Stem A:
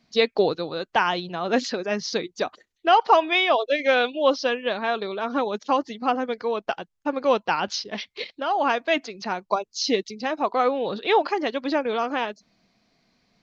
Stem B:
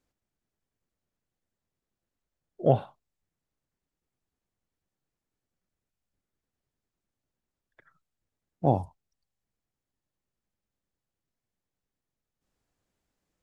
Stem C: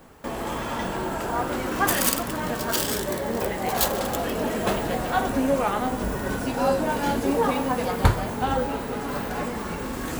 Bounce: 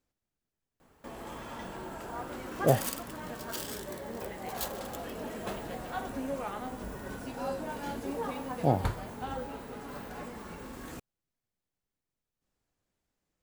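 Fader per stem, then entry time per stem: mute, -2.5 dB, -13.0 dB; mute, 0.00 s, 0.80 s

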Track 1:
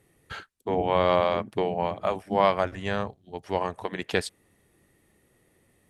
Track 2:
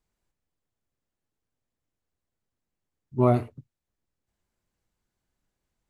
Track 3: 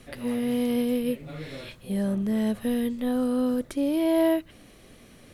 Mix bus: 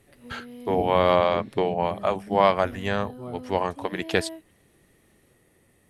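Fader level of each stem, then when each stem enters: +2.5 dB, -18.5 dB, -16.5 dB; 0.00 s, 0.00 s, 0.00 s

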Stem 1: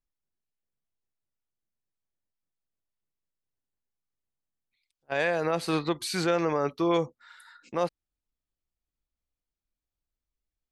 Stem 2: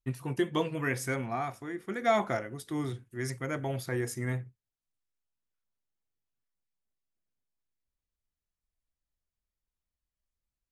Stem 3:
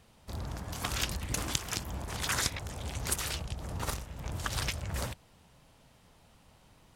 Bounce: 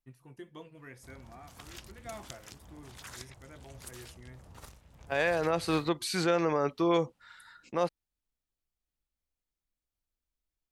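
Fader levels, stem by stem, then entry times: -1.5 dB, -18.5 dB, -15.5 dB; 0.00 s, 0.00 s, 0.75 s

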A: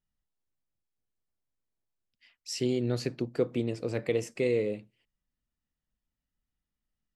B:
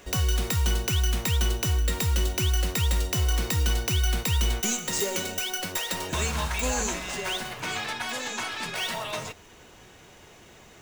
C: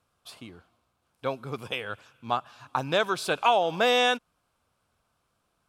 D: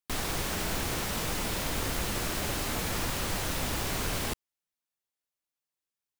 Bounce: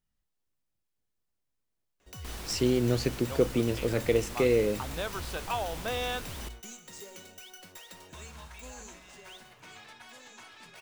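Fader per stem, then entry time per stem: +3.0 dB, -18.5 dB, -11.0 dB, -10.5 dB; 0.00 s, 2.00 s, 2.05 s, 2.15 s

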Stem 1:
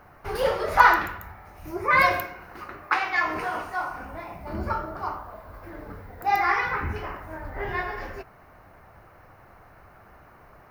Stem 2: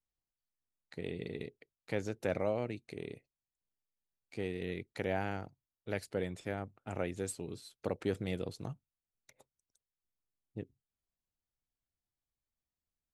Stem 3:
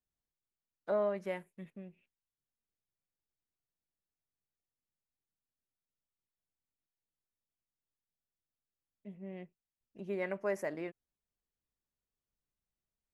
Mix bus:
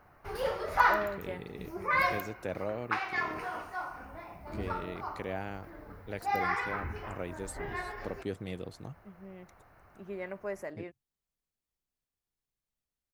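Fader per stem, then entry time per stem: -8.5 dB, -2.5 dB, -3.0 dB; 0.00 s, 0.20 s, 0.00 s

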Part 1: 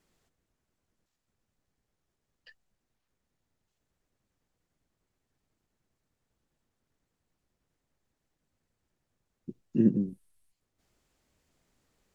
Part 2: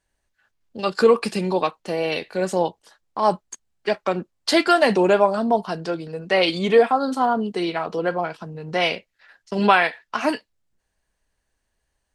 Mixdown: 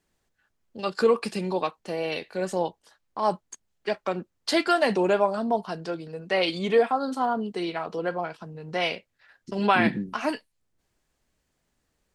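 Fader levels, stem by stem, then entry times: -2.0 dB, -5.5 dB; 0.00 s, 0.00 s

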